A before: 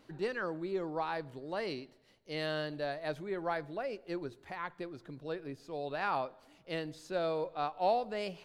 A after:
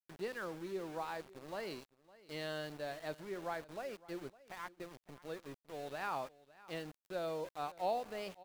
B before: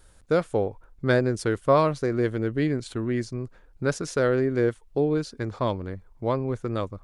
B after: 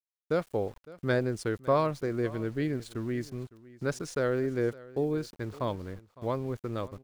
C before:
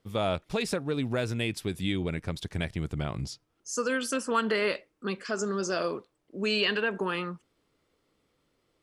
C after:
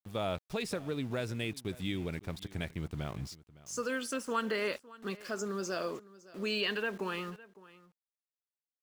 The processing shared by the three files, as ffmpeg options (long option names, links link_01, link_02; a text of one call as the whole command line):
ffmpeg -i in.wav -af "aeval=exprs='val(0)*gte(abs(val(0)),0.00708)':channel_layout=same,aecho=1:1:559:0.1,volume=-6dB" out.wav